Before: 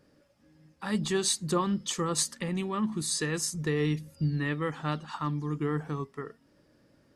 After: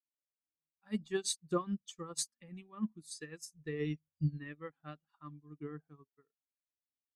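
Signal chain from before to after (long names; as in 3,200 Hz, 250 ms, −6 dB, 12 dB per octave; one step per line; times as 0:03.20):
spectral dynamics exaggerated over time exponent 1.5
notch filter 900 Hz, Q 7.5
expander for the loud parts 2.5 to 1, over −45 dBFS
level −2 dB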